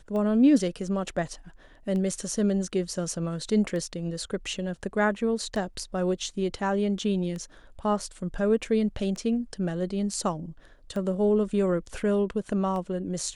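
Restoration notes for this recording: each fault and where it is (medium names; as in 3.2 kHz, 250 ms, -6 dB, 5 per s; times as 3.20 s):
tick 33 1/3 rpm -24 dBFS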